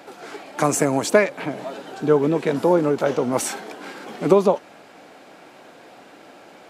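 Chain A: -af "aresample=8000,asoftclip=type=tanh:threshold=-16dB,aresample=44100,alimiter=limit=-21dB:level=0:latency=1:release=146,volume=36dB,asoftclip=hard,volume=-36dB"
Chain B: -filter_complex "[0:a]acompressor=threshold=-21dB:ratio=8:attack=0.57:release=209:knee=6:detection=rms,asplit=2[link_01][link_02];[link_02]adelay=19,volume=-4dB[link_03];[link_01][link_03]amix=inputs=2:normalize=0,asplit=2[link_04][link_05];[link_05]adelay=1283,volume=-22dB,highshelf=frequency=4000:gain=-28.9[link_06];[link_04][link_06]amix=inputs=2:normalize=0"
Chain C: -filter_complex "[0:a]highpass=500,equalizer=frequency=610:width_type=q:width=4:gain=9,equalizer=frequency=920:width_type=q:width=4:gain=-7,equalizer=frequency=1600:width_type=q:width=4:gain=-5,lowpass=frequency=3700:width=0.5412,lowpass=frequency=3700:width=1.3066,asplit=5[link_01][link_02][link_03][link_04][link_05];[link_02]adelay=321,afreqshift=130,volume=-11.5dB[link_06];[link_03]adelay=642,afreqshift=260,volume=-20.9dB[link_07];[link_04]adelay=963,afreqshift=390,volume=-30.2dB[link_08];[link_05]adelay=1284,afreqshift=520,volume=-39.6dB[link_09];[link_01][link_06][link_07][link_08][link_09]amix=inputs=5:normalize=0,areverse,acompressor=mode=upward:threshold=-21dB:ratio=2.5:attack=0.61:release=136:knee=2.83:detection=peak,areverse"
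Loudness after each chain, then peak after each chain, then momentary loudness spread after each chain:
−39.0, −29.0, −21.5 LKFS; −36.0, −14.5, −1.0 dBFS; 9, 17, 19 LU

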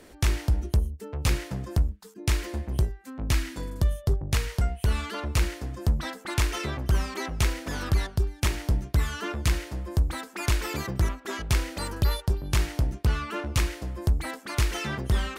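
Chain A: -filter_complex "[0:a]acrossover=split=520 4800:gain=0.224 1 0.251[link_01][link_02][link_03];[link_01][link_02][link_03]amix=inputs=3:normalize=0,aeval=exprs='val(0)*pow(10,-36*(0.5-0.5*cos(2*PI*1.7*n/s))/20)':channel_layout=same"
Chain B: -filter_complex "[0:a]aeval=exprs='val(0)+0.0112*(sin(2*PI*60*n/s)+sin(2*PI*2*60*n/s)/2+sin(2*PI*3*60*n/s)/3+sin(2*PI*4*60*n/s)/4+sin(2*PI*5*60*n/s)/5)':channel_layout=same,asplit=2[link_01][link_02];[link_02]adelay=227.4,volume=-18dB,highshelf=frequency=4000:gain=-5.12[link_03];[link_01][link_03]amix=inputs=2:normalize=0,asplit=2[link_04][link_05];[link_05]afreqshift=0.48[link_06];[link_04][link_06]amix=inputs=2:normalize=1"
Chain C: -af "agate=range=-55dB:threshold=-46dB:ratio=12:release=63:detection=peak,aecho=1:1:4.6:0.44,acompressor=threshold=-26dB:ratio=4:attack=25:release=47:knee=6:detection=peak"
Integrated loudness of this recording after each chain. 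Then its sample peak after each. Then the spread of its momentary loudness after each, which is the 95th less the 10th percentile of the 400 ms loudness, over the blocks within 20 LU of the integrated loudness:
−43.5, −31.5, −31.5 LKFS; −18.0, −13.0, −14.5 dBFS; 14, 6, 3 LU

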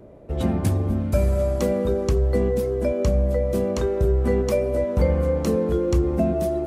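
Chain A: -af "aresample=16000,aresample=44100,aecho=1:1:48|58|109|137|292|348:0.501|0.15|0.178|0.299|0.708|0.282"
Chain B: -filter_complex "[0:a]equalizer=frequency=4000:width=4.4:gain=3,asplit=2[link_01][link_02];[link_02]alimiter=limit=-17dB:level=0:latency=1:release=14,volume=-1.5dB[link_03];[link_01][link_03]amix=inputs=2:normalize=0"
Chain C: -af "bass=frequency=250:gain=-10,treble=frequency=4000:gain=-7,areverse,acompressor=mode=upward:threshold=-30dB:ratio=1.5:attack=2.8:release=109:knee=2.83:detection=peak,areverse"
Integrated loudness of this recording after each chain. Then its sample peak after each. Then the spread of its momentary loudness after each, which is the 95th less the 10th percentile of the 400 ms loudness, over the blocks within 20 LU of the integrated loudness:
−19.0, −18.5, −25.5 LKFS; −5.0, −5.5, −12.0 dBFS; 5, 2, 5 LU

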